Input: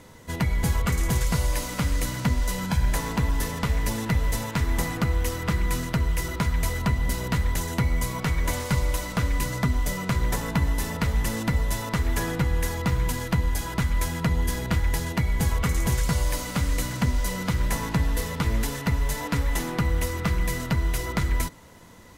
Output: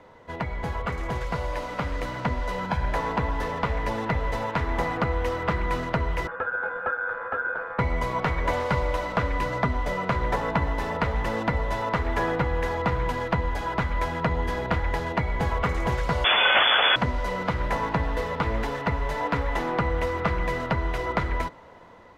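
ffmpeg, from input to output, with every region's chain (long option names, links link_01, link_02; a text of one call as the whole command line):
ffmpeg -i in.wav -filter_complex "[0:a]asettb=1/sr,asplit=3[link_01][link_02][link_03];[link_01]atrim=end=6.274[link_04];[link_02]atrim=start=6.27:end=7.79,asetpts=PTS-STARTPTS,afade=type=in:duration=0.004:curve=qsin,afade=type=out:start_time=1.516:duration=0.004:curve=qsin,aeval=exprs='val(0)*sin(2*PI*1500*n/s)':channel_layout=same,lowpass=1000[link_05];[link_03]atrim=start=7.786[link_06];[link_04][link_05]acrossfade=duration=0.004:curve1=hsin:curve2=qsin[link_07];[link_07][link_06]acrossfade=duration=0.004:curve1=qsin:curve2=hsin,asettb=1/sr,asplit=3[link_08][link_09][link_10];[link_08]atrim=end=16.244[link_11];[link_09]atrim=start=16.24:end=16.96,asetpts=PTS-STARTPTS,afade=type=in:duration=0.004:curve=qsin,afade=type=out:start_time=0.716:duration=0.004:curve=qsin,aeval=exprs='0.211*sin(PI/2*5.62*val(0)/0.211)':channel_layout=same,equalizer=frequency=290:width=1.3:gain=-9,lowpass=frequency=3000:width_type=q:width=0.5098,lowpass=frequency=3000:width_type=q:width=0.6013,lowpass=frequency=3000:width_type=q:width=0.9,lowpass=frequency=3000:width_type=q:width=2.563,afreqshift=-3500[link_12];[link_10]atrim=start=16.956[link_13];[link_11][link_12]acrossfade=duration=0.004:curve1=hsin:curve2=qsin[link_14];[link_14][link_13]acrossfade=duration=0.004:curve1=qsin:curve2=hsin,tiltshelf=frequency=1400:gain=8.5,dynaudnorm=framelen=760:gausssize=5:maxgain=11.5dB,acrossover=split=490 4600:gain=0.141 1 0.126[link_15][link_16][link_17];[link_15][link_16][link_17]amix=inputs=3:normalize=0" out.wav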